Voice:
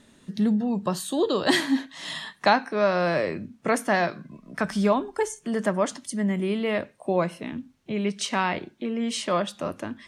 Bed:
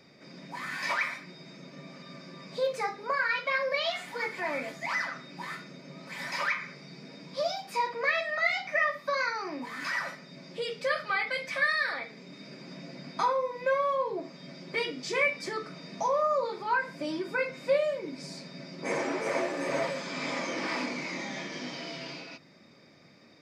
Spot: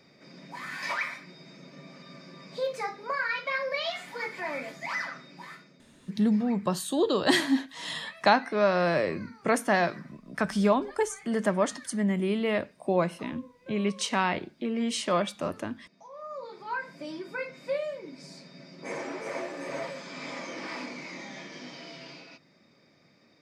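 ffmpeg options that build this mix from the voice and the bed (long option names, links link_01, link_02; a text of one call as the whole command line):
ffmpeg -i stem1.wav -i stem2.wav -filter_complex "[0:a]adelay=5800,volume=-1.5dB[link_01];[1:a]volume=15dB,afade=type=out:start_time=5.09:duration=0.85:silence=0.1,afade=type=in:start_time=16.09:duration=0.71:silence=0.149624[link_02];[link_01][link_02]amix=inputs=2:normalize=0" out.wav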